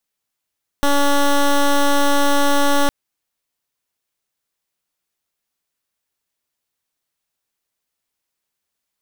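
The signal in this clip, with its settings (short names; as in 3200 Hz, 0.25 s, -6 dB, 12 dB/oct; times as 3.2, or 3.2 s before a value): pulse 284 Hz, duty 12% -14 dBFS 2.06 s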